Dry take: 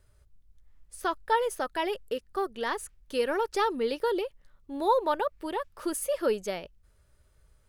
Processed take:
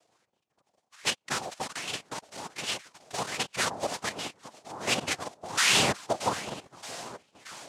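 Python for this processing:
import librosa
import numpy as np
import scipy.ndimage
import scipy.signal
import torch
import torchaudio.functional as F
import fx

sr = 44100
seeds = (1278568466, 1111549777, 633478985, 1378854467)

y = fx.level_steps(x, sr, step_db=13)
y = fx.peak_eq(y, sr, hz=2700.0, db=fx.steps((0.0, 12.0), (5.19, -5.0)), octaves=2.0)
y = fx.spec_paint(y, sr, seeds[0], shape='fall', start_s=5.57, length_s=0.35, low_hz=510.0, high_hz=2400.0, level_db=-19.0)
y = fx.echo_feedback(y, sr, ms=625, feedback_pct=57, wet_db=-20.5)
y = fx.tube_stage(y, sr, drive_db=29.0, bias=0.55)
y = fx.hpss(y, sr, part='harmonic', gain_db=-8)
y = fx.noise_vocoder(y, sr, seeds[1], bands=2)
y = fx.bell_lfo(y, sr, hz=1.3, low_hz=620.0, high_hz=3000.0, db=10)
y = F.gain(torch.from_numpy(y), 4.5).numpy()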